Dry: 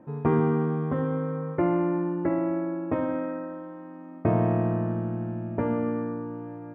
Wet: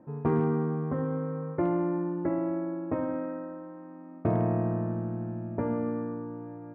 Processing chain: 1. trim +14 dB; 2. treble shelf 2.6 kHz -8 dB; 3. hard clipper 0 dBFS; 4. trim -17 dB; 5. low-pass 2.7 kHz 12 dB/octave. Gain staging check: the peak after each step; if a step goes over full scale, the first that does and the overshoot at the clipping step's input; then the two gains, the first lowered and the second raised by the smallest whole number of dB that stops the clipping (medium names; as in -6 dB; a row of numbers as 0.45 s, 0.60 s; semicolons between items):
+3.5 dBFS, +3.5 dBFS, 0.0 dBFS, -17.0 dBFS, -17.0 dBFS; step 1, 3.5 dB; step 1 +10 dB, step 4 -13 dB